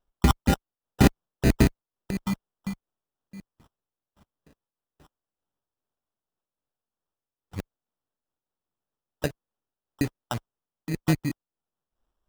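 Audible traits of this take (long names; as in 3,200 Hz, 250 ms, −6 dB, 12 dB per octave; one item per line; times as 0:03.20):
phaser sweep stages 4, 2.1 Hz, lowest notch 450–1,900 Hz
aliases and images of a low sample rate 2,200 Hz, jitter 0%
amplitude modulation by smooth noise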